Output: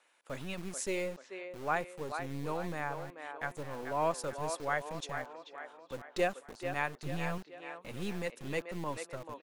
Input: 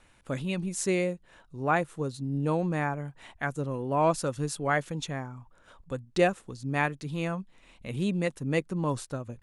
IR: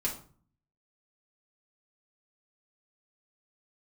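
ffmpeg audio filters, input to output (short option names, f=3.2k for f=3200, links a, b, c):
-filter_complex "[0:a]asettb=1/sr,asplit=3[a][b][c];[a]atrim=end=6.984[d];[b]atrim=start=6.98:end=7.38,asetpts=PTS-STARTPTS,afade=t=in:d=0.004:c=qsin,afade=t=out:st=0.396:d=0.004:c=qsin,equalizer=f=95:w=0.57:g=10[e];[c]atrim=start=7.376[f];[d][e]acrossfade=d=0.004:c1=hsin:c2=qsin[g];[g][f]acrossfade=d=0.004:c1=qsin:c2=hsin,acrossover=split=370|4400[h][i][j];[h]acrusher=bits=4:dc=4:mix=0:aa=0.000001[k];[i]aecho=1:1:437|874|1311|1748|2185|2622:0.447|0.214|0.103|0.0494|0.0237|0.0114[l];[k][l][j]amix=inputs=3:normalize=0,volume=-6dB"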